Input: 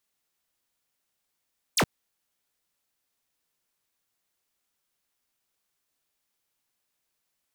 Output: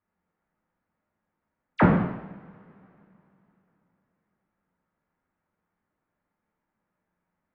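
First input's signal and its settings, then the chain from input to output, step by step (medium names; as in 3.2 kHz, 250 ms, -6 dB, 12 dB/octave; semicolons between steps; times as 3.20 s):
laser zap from 11 kHz, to 93 Hz, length 0.07 s square, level -21.5 dB
low-pass 1.7 kHz 24 dB/octave; peaking EQ 190 Hz +13 dB 0.65 oct; two-slope reverb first 0.88 s, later 3.4 s, from -24 dB, DRR -6 dB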